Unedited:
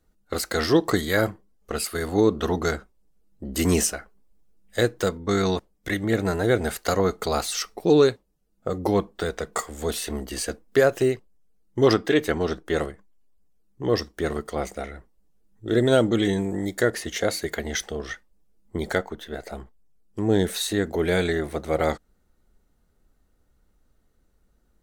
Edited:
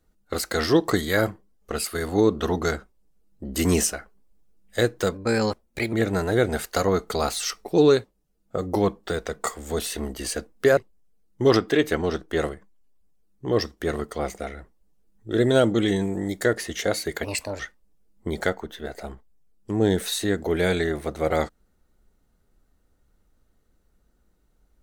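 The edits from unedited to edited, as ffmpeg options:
ffmpeg -i in.wav -filter_complex "[0:a]asplit=6[link_01][link_02][link_03][link_04][link_05][link_06];[link_01]atrim=end=5.144[link_07];[link_02]atrim=start=5.14:end=6.05,asetpts=PTS-STARTPTS,asetrate=50715,aresample=44100[link_08];[link_03]atrim=start=6.046:end=10.892[link_09];[link_04]atrim=start=11.138:end=17.614[link_10];[link_05]atrim=start=17.61:end=18.08,asetpts=PTS-STARTPTS,asetrate=58653,aresample=44100,atrim=end_sample=15584,asetpts=PTS-STARTPTS[link_11];[link_06]atrim=start=18.076[link_12];[link_07][link_08]acrossfade=duration=0.004:curve1=hsin:curve2=hsin[link_13];[link_13][link_09]acrossfade=duration=0.004:curve1=hsin:curve2=hsin[link_14];[link_14][link_10]acrossfade=duration=0.004:curve1=hsin:curve2=hsin[link_15];[link_15][link_11]acrossfade=duration=0.004:curve1=hsin:curve2=hsin[link_16];[link_16][link_12]acrossfade=duration=0.004:curve1=hsin:curve2=hsin" out.wav

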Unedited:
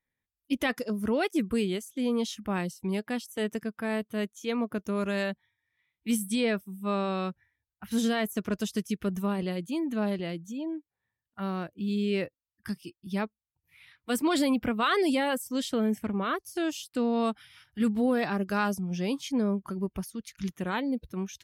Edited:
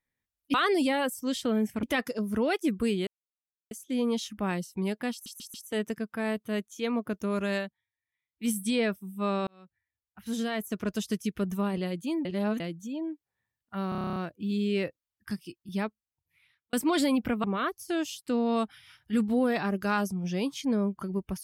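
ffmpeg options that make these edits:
ffmpeg -i in.wav -filter_complex "[0:a]asplit=23[link_01][link_02][link_03][link_04][link_05][link_06][link_07][link_08][link_09][link_10][link_11][link_12][link_13][link_14][link_15][link_16][link_17][link_18][link_19][link_20][link_21][link_22][link_23];[link_01]atrim=end=0.542[link_24];[link_02]atrim=start=14.818:end=16.112[link_25];[link_03]atrim=start=0.538:end=1.78,asetpts=PTS-STARTPTS,afade=type=out:start_time=1.238:duration=0.004:curve=hsin,apad=pad_dur=0.64[link_26];[link_04]atrim=start=1.78:end=3.332,asetpts=PTS-STARTPTS,afade=type=in:duration=0.004:curve=hsin[link_27];[link_05]atrim=start=3.188:end=3.332[link_28];[link_06]atrim=start=3.188:end=3.332[link_29];[link_07]atrim=start=3.188:end=5.36,asetpts=PTS-STARTPTS,afade=type=out:start_time=2.032:duration=0.14:silence=0.251189[link_30];[link_08]atrim=start=5.36:end=6.02,asetpts=PTS-STARTPTS,volume=-12dB[link_31];[link_09]atrim=start=6.02:end=7.12,asetpts=PTS-STARTPTS,afade=type=in:duration=0.14:silence=0.251189,afade=type=out:start_time=1.096:duration=0.004:curve=hsin[link_32];[link_10]atrim=start=7.12:end=9.902,asetpts=PTS-STARTPTS,afade=type=in:duration=1.57[link_33];[link_11]atrim=start=9.898:end=10.252,asetpts=PTS-STARTPTS,areverse[link_34];[link_12]atrim=start=10.248:end=11.572[link_35];[link_13]atrim=start=11.538:end=11.572[link_36];[link_14]atrim=start=11.538:end=11.572[link_37];[link_15]atrim=start=11.538:end=11.572[link_38];[link_16]atrim=start=11.538:end=11.572[link_39];[link_17]atrim=start=11.538:end=11.572[link_40];[link_18]atrim=start=11.538:end=11.572[link_41];[link_19]atrim=start=11.538:end=11.572[link_42];[link_20]atrim=start=11.538:end=11.572[link_43];[link_21]atrim=start=11.538:end=14.11,asetpts=PTS-STARTPTS,afade=type=out:start_time=1.602:duration=0.97[link_44];[link_22]atrim=start=14.11:end=14.822,asetpts=PTS-STARTPTS,afade=type=in:duration=0.004:curve=hsin[link_45];[link_23]atrim=start=16.108[link_46];[link_24][link_25]acrossfade=duration=0.004:curve1=hsin:curve2=hsin[link_47];[link_26][link_27]concat=n=2:v=0:a=1[link_48];[link_47][link_48]acrossfade=duration=0.004:curve1=hsin:curve2=hsin[link_49];[link_49][link_28]acrossfade=duration=0.004:curve1=hsin:curve2=hsin[link_50];[link_50][link_29]acrossfade=duration=0.004:curve1=hsin:curve2=hsin[link_51];[link_30][link_31][link_32][link_33]concat=n=4:v=0:a=1[link_52];[link_51][link_52]acrossfade=duration=0.004:curve1=hsin:curve2=hsin[link_53];[link_53][link_34]acrossfade=duration=0.004:curve1=hsin:curve2=hsin[link_54];[link_54][link_35]acrossfade=duration=0.004:curve1=hsin:curve2=hsin[link_55];[link_55][link_36]acrossfade=duration=0.004:curve1=hsin:curve2=hsin[link_56];[link_56][link_37]acrossfade=duration=0.004:curve1=hsin:curve2=hsin[link_57];[link_57][link_38]acrossfade=duration=0.004:curve1=hsin:curve2=hsin[link_58];[link_58][link_39]acrossfade=duration=0.004:curve1=hsin:curve2=hsin[link_59];[link_59][link_40]acrossfade=duration=0.004:curve1=hsin:curve2=hsin[link_60];[link_60][link_41]acrossfade=duration=0.004:curve1=hsin:curve2=hsin[link_61];[link_61][link_42]acrossfade=duration=0.004:curve1=hsin:curve2=hsin[link_62];[link_62][link_43]acrossfade=duration=0.004:curve1=hsin:curve2=hsin[link_63];[link_44][link_45]concat=n=2:v=0:a=1[link_64];[link_63][link_64]acrossfade=duration=0.004:curve1=hsin:curve2=hsin[link_65];[link_65][link_46]acrossfade=duration=0.004:curve1=hsin:curve2=hsin" out.wav

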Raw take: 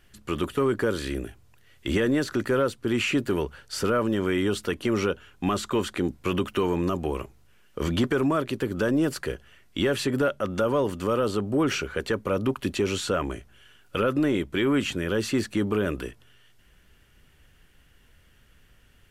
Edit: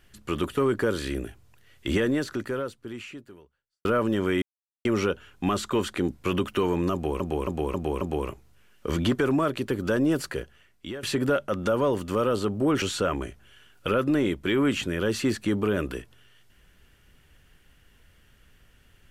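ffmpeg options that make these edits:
ffmpeg -i in.wav -filter_complex "[0:a]asplit=10[link_01][link_02][link_03][link_04][link_05][link_06][link_07][link_08][link_09][link_10];[link_01]atrim=end=3.85,asetpts=PTS-STARTPTS,afade=type=out:start_time=1.95:duration=1.9:curve=qua[link_11];[link_02]atrim=start=3.85:end=4.42,asetpts=PTS-STARTPTS,afade=type=in:duration=0.004:curve=hsin,afade=type=out:start_time=0.566:duration=0.004:curve=hsin[link_12];[link_03]atrim=start=4.42:end=4.85,asetpts=PTS-STARTPTS,volume=0[link_13];[link_04]atrim=start=4.85:end=7.202,asetpts=PTS-STARTPTS,afade=type=in:duration=0.004:curve=hsin[link_14];[link_05]atrim=start=6.928:end=7.202[link_15];[link_06]atrim=start=6.928:end=7.202[link_16];[link_07]atrim=start=6.928:end=7.202[link_17];[link_08]atrim=start=6.928:end=9.95,asetpts=PTS-STARTPTS,afade=type=out:start_time=2.232:duration=0.79:silence=0.158489[link_18];[link_09]atrim=start=9.95:end=11.742,asetpts=PTS-STARTPTS,afade=type=in:duration=0.004:curve=hsin:silence=0.158489[link_19];[link_10]atrim=start=12.908[link_20];[link_11][link_12][link_13][link_14]concat=n=4:v=0:a=1[link_21];[link_21][link_15]acrossfade=duration=0.004:curve1=hsin:curve2=hsin[link_22];[link_22][link_16]acrossfade=duration=0.004:curve1=hsin:curve2=hsin[link_23];[link_23][link_17]acrossfade=duration=0.004:curve1=hsin:curve2=hsin[link_24];[link_18][link_19]concat=n=2:v=0:a=1[link_25];[link_24][link_25]acrossfade=duration=0.004:curve1=hsin:curve2=hsin[link_26];[link_26][link_20]acrossfade=duration=0.004:curve1=hsin:curve2=hsin" out.wav

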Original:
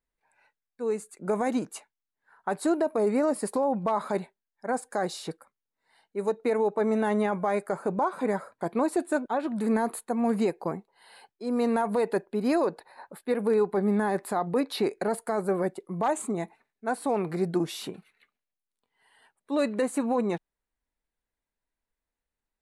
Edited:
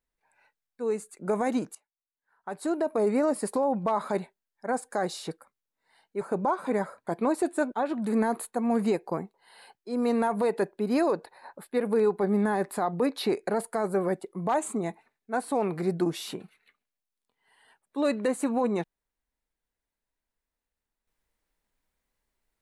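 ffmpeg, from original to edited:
ffmpeg -i in.wav -filter_complex "[0:a]asplit=3[link_01][link_02][link_03];[link_01]atrim=end=1.75,asetpts=PTS-STARTPTS,afade=type=out:start_time=1.746:duration=0.004:curve=hsin:silence=0.0841395[link_04];[link_02]atrim=start=1.75:end=6.212,asetpts=PTS-STARTPTS,afade=type=in:duration=1.2:curve=qua:silence=0.0841395[link_05];[link_03]atrim=start=7.748[link_06];[link_04][link_05]concat=n=2:v=0:a=1[link_07];[link_07][link_06]acrossfade=duration=0.004:curve1=hsin:curve2=hsin" out.wav

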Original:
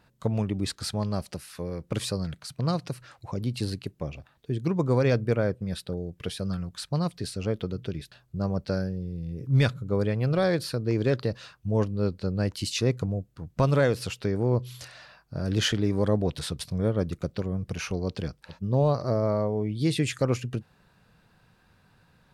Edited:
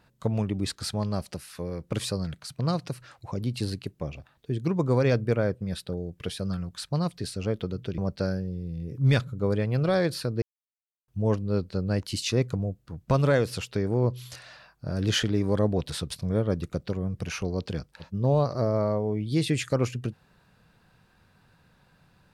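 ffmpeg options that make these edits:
ffmpeg -i in.wav -filter_complex "[0:a]asplit=4[link_01][link_02][link_03][link_04];[link_01]atrim=end=7.982[link_05];[link_02]atrim=start=8.468:end=10.91,asetpts=PTS-STARTPTS,afade=type=out:start_time=2.438:duration=0.004:curve=hsin[link_06];[link_03]atrim=start=10.91:end=11.57,asetpts=PTS-STARTPTS,volume=0[link_07];[link_04]atrim=start=11.57,asetpts=PTS-STARTPTS,afade=type=in:duration=0.004:curve=hsin[link_08];[link_06][link_07][link_08]concat=n=3:v=0:a=1[link_09];[link_05][link_09]acrossfade=duration=0.004:curve1=hsin:curve2=hsin" out.wav

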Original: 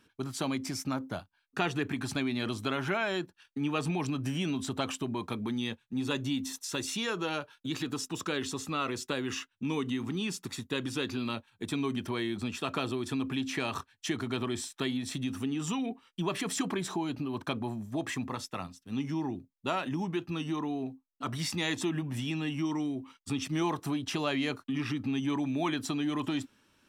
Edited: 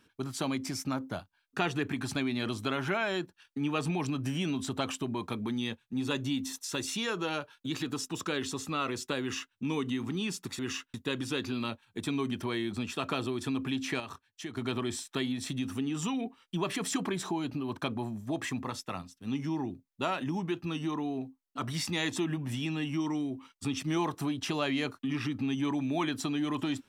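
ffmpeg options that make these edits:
ffmpeg -i in.wav -filter_complex "[0:a]asplit=5[link_01][link_02][link_03][link_04][link_05];[link_01]atrim=end=10.592[link_06];[link_02]atrim=start=9.208:end=9.562[link_07];[link_03]atrim=start=10.588:end=13.652[link_08];[link_04]atrim=start=13.648:end=14.222,asetpts=PTS-STARTPTS,volume=-8dB[link_09];[link_05]atrim=start=14.218[link_10];[link_06][link_07]acrossfade=duration=0.004:curve1=hsin:curve2=hsin[link_11];[link_11][link_08]acrossfade=duration=0.004:curve1=hsin:curve2=hsin[link_12];[link_12][link_09]acrossfade=duration=0.004:curve1=hsin:curve2=hsin[link_13];[link_13][link_10]acrossfade=duration=0.004:curve1=hsin:curve2=hsin" out.wav

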